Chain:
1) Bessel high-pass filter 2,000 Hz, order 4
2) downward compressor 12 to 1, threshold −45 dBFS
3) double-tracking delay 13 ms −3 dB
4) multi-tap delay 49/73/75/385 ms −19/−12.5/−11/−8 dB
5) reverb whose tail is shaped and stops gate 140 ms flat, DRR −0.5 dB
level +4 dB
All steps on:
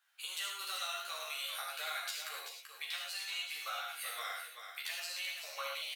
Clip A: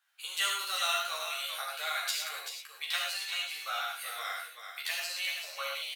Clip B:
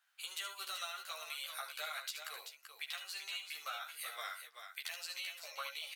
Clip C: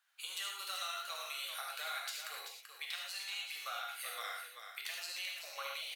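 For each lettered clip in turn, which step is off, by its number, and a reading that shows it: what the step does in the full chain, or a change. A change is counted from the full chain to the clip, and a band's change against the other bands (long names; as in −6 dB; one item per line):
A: 2, average gain reduction 4.0 dB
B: 5, echo-to-direct ratio 2.5 dB to −5.0 dB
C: 3, change in integrated loudness −1.5 LU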